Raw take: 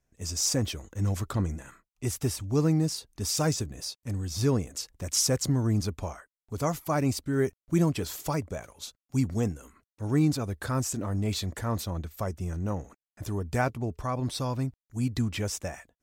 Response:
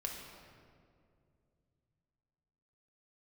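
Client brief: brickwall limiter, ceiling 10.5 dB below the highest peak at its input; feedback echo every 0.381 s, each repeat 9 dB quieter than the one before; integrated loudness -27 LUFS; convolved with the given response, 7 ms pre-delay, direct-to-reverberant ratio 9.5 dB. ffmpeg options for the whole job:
-filter_complex "[0:a]alimiter=limit=-23.5dB:level=0:latency=1,aecho=1:1:381|762|1143|1524:0.355|0.124|0.0435|0.0152,asplit=2[a][b];[1:a]atrim=start_sample=2205,adelay=7[c];[b][c]afir=irnorm=-1:irlink=0,volume=-10dB[d];[a][d]amix=inputs=2:normalize=0,volume=5.5dB"

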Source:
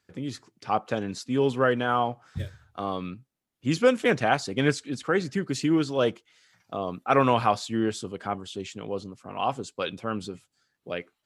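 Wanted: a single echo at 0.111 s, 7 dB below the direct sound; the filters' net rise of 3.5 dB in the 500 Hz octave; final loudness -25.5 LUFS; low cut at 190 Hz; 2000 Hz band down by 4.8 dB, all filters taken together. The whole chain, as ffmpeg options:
-af "highpass=190,equalizer=f=500:t=o:g=4.5,equalizer=f=2k:t=o:g=-7,aecho=1:1:111:0.447,volume=-0.5dB"

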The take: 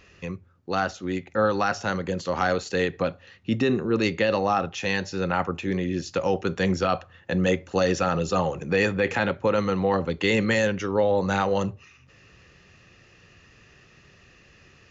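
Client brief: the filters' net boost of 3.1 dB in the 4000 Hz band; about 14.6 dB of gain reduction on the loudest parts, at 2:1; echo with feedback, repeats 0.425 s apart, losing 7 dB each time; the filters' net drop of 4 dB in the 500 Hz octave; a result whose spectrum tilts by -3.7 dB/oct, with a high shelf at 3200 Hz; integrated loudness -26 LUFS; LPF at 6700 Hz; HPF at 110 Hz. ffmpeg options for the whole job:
-af "highpass=110,lowpass=6.7k,equalizer=f=500:t=o:g=-4.5,highshelf=f=3.2k:g=-3,equalizer=f=4k:t=o:g=6.5,acompressor=threshold=-48dB:ratio=2,aecho=1:1:425|850|1275|1700|2125:0.447|0.201|0.0905|0.0407|0.0183,volume=13.5dB"

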